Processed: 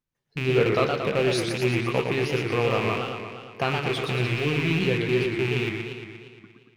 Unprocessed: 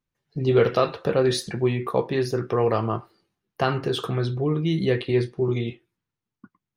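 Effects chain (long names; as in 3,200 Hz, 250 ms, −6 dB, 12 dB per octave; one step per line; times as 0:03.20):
loose part that buzzes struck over −28 dBFS, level −16 dBFS
feedback echo with a swinging delay time 117 ms, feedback 67%, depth 194 cents, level −5 dB
level −3.5 dB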